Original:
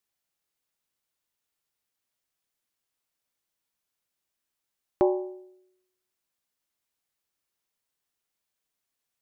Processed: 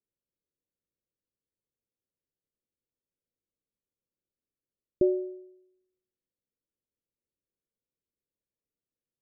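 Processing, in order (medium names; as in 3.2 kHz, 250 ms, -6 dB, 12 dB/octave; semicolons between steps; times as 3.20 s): steep low-pass 570 Hz 72 dB/octave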